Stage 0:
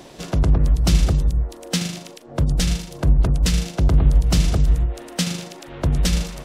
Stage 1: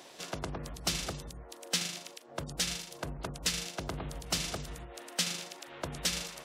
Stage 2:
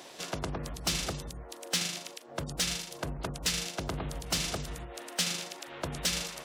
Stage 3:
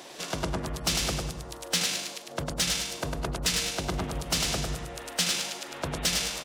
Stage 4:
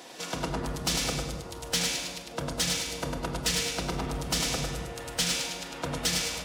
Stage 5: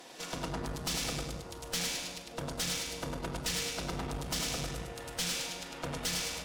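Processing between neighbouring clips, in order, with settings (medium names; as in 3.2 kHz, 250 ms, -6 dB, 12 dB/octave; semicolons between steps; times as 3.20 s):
high-pass 900 Hz 6 dB/octave; trim -5 dB
saturation -24 dBFS, distortion -15 dB; trim +3.5 dB
feedback delay 101 ms, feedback 39%, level -4 dB; trim +3 dB
reverberation RT60 1.6 s, pre-delay 4 ms, DRR 1.5 dB; trim -2.5 dB
valve stage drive 27 dB, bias 0.6; trim -1.5 dB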